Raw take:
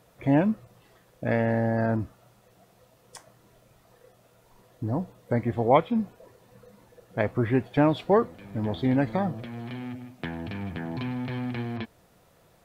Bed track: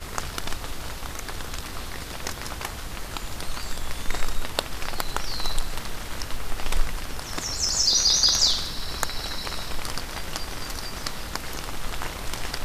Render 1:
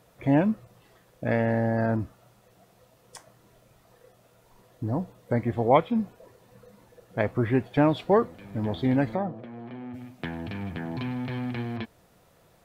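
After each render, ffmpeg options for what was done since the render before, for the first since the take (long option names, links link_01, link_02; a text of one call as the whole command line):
ffmpeg -i in.wav -filter_complex "[0:a]asplit=3[link_01][link_02][link_03];[link_01]afade=type=out:start_time=9.14:duration=0.02[link_04];[link_02]bandpass=frequency=490:width_type=q:width=0.59,afade=type=in:start_time=9.14:duration=0.02,afade=type=out:start_time=9.93:duration=0.02[link_05];[link_03]afade=type=in:start_time=9.93:duration=0.02[link_06];[link_04][link_05][link_06]amix=inputs=3:normalize=0" out.wav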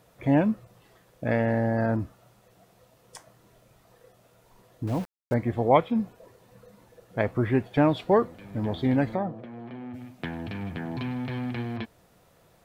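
ffmpeg -i in.wav -filter_complex "[0:a]asettb=1/sr,asplit=3[link_01][link_02][link_03];[link_01]atrim=end=4.874[link_04];[link_02]atrim=start=4.87:end=5.34,asetpts=PTS-STARTPTS,afade=type=in:duration=0.004:curve=qsin,afade=type=out:start_time=0.466:duration=0.004:curve=qsin,aeval=exprs='val(0)*gte(abs(val(0)),0.015)':channel_layout=same[link_05];[link_03]atrim=start=5.336[link_06];[link_04][link_05]acrossfade=duration=0.004:curve1=hsin:curve2=qsin[link_07];[link_07][link_06]acrossfade=duration=0.004:curve1=qsin:curve2=hsin" out.wav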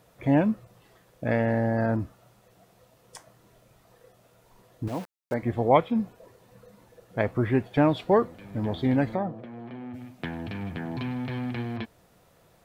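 ffmpeg -i in.wav -filter_complex "[0:a]asettb=1/sr,asplit=3[link_01][link_02][link_03];[link_01]atrim=end=4.884[link_04];[link_02]atrim=start=4.88:end=5.43,asetpts=PTS-STARTPTS,afade=type=in:duration=0.004:curve=qsin,afade=type=out:start_time=0.546:duration=0.004:curve=qsin,highpass=frequency=330:poles=1[link_05];[link_03]atrim=start=5.426[link_06];[link_04][link_05]acrossfade=duration=0.004:curve1=hsin:curve2=qsin[link_07];[link_07][link_06]acrossfade=duration=0.004:curve1=qsin:curve2=hsin" out.wav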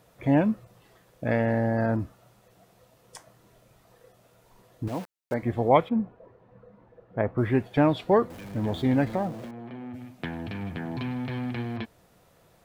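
ffmpeg -i in.wav -filter_complex "[0:a]asettb=1/sr,asplit=3[link_01][link_02][link_03];[link_01]atrim=end=5.894[link_04];[link_02]atrim=start=5.89:end=7.38,asetpts=PTS-STARTPTS,afade=type=in:duration=0.004:curve=qsin,afade=type=out:start_time=1.486:duration=0.004:curve=qsin,lowpass=1500[link_05];[link_03]atrim=start=7.376[link_06];[link_04][link_05]acrossfade=duration=0.004:curve1=hsin:curve2=qsin[link_07];[link_07][link_06]acrossfade=duration=0.004:curve1=qsin:curve2=hsin,asettb=1/sr,asplit=3[link_08][link_09][link_10];[link_08]atrim=end=8.304[link_11];[link_09]atrim=start=8.3:end=9.51,asetpts=PTS-STARTPTS,afade=type=in:duration=0.004:curve=qsin,afade=type=out:start_time=1.206:duration=0.004:curve=qsin,aeval=exprs='val(0)+0.5*0.00794*sgn(val(0))':channel_layout=same[link_12];[link_10]atrim=start=9.506[link_13];[link_11][link_12]acrossfade=duration=0.004:curve1=hsin:curve2=qsin[link_14];[link_14][link_13]acrossfade=duration=0.004:curve1=qsin:curve2=hsin" out.wav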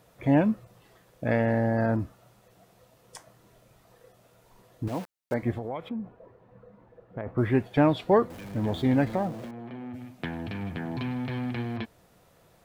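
ffmpeg -i in.wav -filter_complex "[0:a]asplit=3[link_01][link_02][link_03];[link_01]afade=type=out:start_time=5.55:duration=0.02[link_04];[link_02]acompressor=threshold=-30dB:ratio=8:attack=3.2:release=140:knee=1:detection=peak,afade=type=in:start_time=5.55:duration=0.02,afade=type=out:start_time=7.26:duration=0.02[link_05];[link_03]afade=type=in:start_time=7.26:duration=0.02[link_06];[link_04][link_05][link_06]amix=inputs=3:normalize=0" out.wav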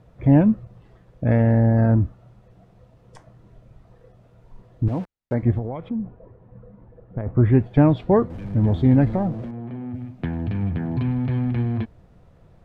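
ffmpeg -i in.wav -af "aemphasis=mode=reproduction:type=riaa" out.wav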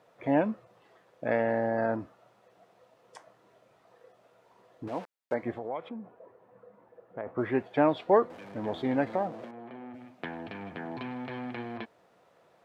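ffmpeg -i in.wav -af "highpass=520" out.wav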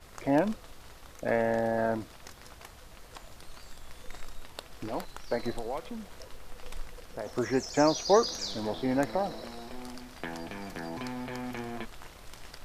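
ffmpeg -i in.wav -i bed.wav -filter_complex "[1:a]volume=-16.5dB[link_01];[0:a][link_01]amix=inputs=2:normalize=0" out.wav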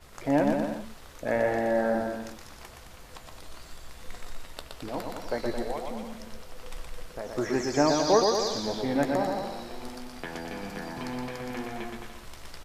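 ffmpeg -i in.wav -filter_complex "[0:a]asplit=2[link_01][link_02];[link_02]adelay=14,volume=-12dB[link_03];[link_01][link_03]amix=inputs=2:normalize=0,aecho=1:1:120|216|292.8|354.2|403.4:0.631|0.398|0.251|0.158|0.1" out.wav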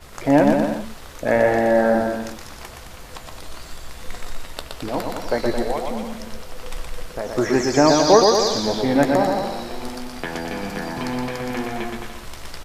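ffmpeg -i in.wav -af "volume=9dB,alimiter=limit=-2dB:level=0:latency=1" out.wav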